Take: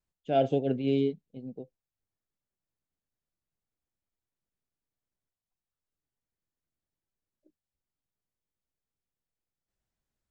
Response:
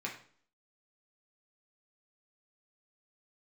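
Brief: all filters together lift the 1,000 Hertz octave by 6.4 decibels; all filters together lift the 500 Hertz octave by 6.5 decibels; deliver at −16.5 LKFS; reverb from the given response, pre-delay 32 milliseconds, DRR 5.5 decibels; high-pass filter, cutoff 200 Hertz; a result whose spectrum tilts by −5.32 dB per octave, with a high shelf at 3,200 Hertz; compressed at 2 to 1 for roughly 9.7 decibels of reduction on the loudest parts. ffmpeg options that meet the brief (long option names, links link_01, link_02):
-filter_complex "[0:a]highpass=200,equalizer=frequency=500:width_type=o:gain=7,equalizer=frequency=1000:width_type=o:gain=5,highshelf=frequency=3200:gain=7,acompressor=threshold=-31dB:ratio=2,asplit=2[link_01][link_02];[1:a]atrim=start_sample=2205,adelay=32[link_03];[link_02][link_03]afir=irnorm=-1:irlink=0,volume=-8dB[link_04];[link_01][link_04]amix=inputs=2:normalize=0,volume=15.5dB"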